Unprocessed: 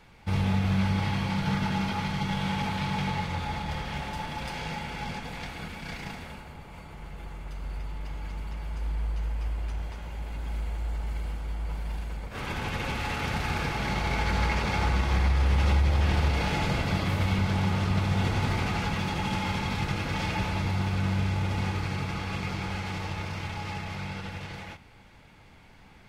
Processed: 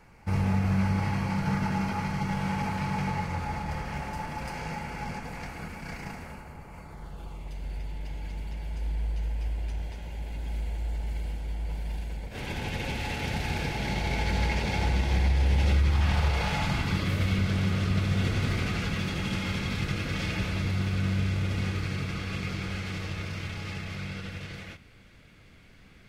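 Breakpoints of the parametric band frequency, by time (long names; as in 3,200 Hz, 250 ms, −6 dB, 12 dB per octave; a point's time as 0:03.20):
parametric band −14 dB 0.47 octaves
0:06.80 3,500 Hz
0:07.61 1,200 Hz
0:15.65 1,200 Hz
0:16.32 230 Hz
0:17.08 870 Hz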